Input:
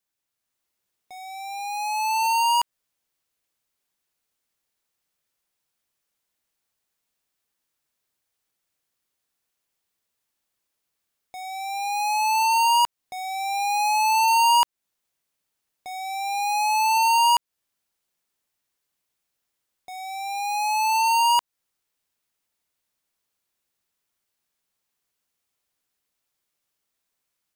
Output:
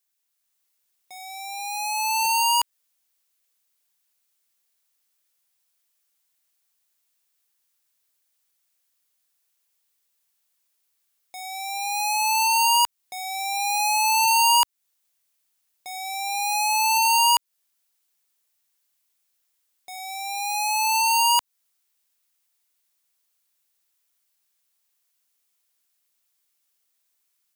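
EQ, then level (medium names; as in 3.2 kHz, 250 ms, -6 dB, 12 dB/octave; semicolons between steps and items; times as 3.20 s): tilt EQ +2.5 dB/octave; -1.5 dB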